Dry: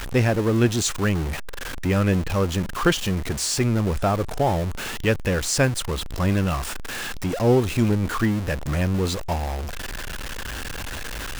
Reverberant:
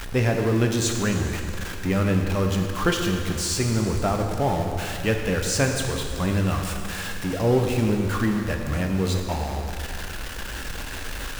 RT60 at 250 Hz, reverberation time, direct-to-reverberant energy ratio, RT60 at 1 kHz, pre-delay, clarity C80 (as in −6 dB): 2.3 s, 2.3 s, 2.5 dB, 2.3 s, 3 ms, 5.0 dB